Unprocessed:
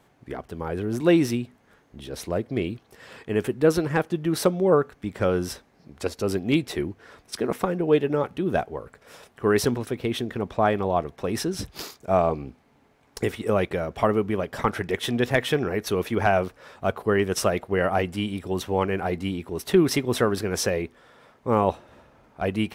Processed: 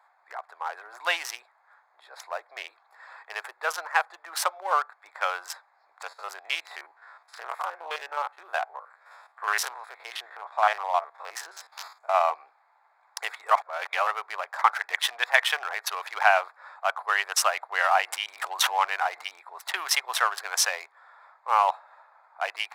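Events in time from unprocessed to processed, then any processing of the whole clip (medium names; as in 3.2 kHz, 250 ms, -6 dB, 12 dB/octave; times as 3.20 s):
1.42–5.06 s: elliptic high-pass 280 Hz
6.03–12.21 s: spectrogram pixelated in time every 50 ms
13.51–14.07 s: reverse
17.85–19.37 s: swell ahead of each attack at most 36 dB/s
whole clip: local Wiener filter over 15 samples; steep high-pass 790 Hz 36 dB/octave; trim +6.5 dB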